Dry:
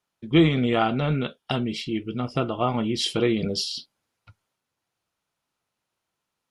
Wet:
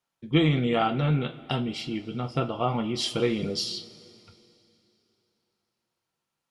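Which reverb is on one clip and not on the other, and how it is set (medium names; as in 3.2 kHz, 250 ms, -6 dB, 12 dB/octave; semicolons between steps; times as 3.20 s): two-slope reverb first 0.22 s, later 3 s, from -21 dB, DRR 5.5 dB; trim -3.5 dB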